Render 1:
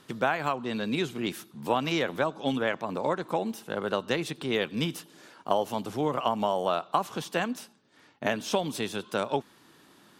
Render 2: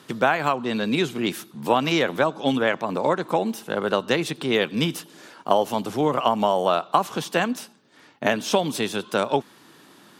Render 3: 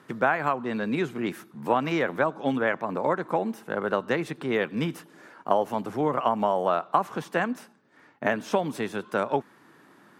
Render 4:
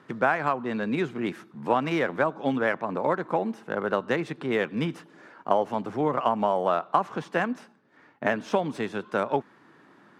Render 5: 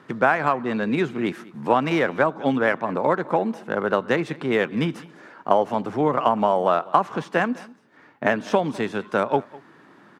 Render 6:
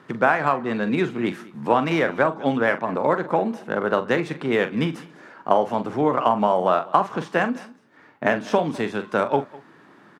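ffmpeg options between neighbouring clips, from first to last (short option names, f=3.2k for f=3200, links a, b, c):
-af "highpass=110,volume=6.5dB"
-af "highshelf=f=2.5k:t=q:w=1.5:g=-8,volume=-4dB"
-af "adynamicsmooth=sensitivity=6.5:basefreq=6.2k"
-af "aecho=1:1:203:0.0841,volume=4.5dB"
-filter_complex "[0:a]asplit=2[a][b];[b]adelay=43,volume=-11dB[c];[a][c]amix=inputs=2:normalize=0"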